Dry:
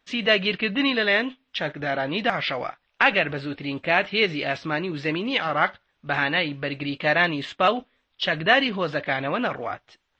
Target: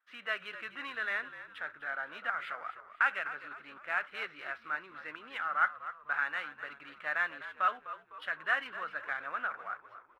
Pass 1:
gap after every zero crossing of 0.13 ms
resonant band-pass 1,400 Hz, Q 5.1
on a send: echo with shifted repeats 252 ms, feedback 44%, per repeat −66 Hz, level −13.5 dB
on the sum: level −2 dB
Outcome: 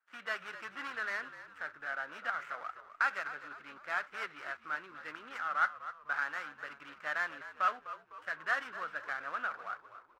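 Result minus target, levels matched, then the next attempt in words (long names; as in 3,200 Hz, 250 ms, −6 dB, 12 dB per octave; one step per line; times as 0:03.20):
gap after every zero crossing: distortion +13 dB
gap after every zero crossing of 0.041 ms
resonant band-pass 1,400 Hz, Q 5.1
on a send: echo with shifted repeats 252 ms, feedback 44%, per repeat −66 Hz, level −13.5 dB
on the sum: level −2 dB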